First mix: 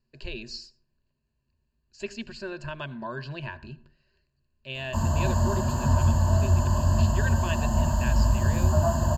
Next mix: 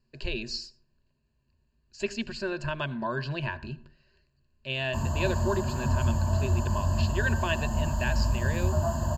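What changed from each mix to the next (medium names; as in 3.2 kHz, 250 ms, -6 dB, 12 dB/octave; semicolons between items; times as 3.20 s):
speech +4.0 dB; background -4.5 dB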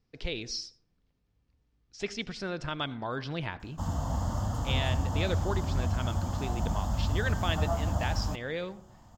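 background: entry -1.15 s; master: remove rippled EQ curve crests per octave 1.4, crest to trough 15 dB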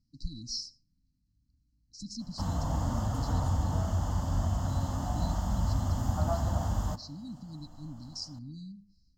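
speech: add brick-wall FIR band-stop 310–3900 Hz; background: entry -1.40 s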